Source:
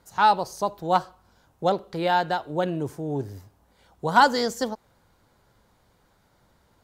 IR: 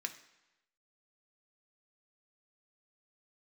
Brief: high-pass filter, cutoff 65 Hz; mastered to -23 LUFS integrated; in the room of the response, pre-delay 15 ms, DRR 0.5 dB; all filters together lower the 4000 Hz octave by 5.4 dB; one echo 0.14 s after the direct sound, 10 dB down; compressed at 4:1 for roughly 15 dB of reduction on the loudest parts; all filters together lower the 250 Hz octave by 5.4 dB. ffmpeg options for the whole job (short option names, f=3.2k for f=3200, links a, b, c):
-filter_complex "[0:a]highpass=65,equalizer=f=250:t=o:g=-8,equalizer=f=4k:t=o:g=-6.5,acompressor=threshold=-31dB:ratio=4,aecho=1:1:140:0.316,asplit=2[a][b];[1:a]atrim=start_sample=2205,adelay=15[c];[b][c]afir=irnorm=-1:irlink=0,volume=-0.5dB[d];[a][d]amix=inputs=2:normalize=0,volume=10.5dB"